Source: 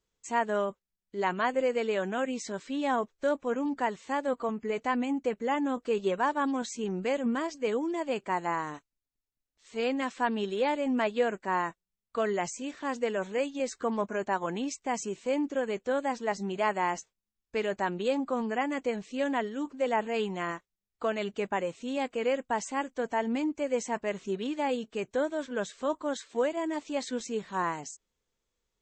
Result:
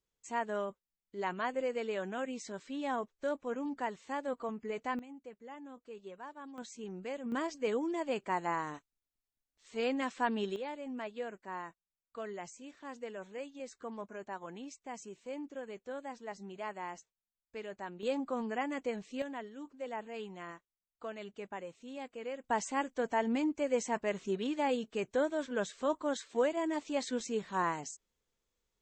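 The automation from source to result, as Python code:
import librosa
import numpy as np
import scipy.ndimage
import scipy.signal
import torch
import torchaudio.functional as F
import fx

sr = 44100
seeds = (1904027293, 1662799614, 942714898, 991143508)

y = fx.gain(x, sr, db=fx.steps((0.0, -7.0), (4.99, -19.5), (6.58, -11.0), (7.32, -3.5), (10.56, -13.0), (18.03, -5.5), (19.22, -12.5), (22.44, -2.0)))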